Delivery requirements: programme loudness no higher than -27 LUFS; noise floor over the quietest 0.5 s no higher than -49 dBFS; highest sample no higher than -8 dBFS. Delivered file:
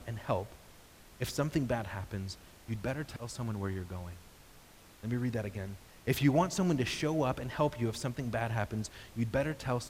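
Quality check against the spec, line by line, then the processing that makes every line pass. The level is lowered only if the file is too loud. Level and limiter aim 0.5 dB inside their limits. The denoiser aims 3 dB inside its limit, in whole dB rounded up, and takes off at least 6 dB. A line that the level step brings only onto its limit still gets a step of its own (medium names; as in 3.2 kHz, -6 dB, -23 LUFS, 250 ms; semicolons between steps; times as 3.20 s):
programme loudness -34.5 LUFS: pass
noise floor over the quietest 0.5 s -57 dBFS: pass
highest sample -15.0 dBFS: pass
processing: none needed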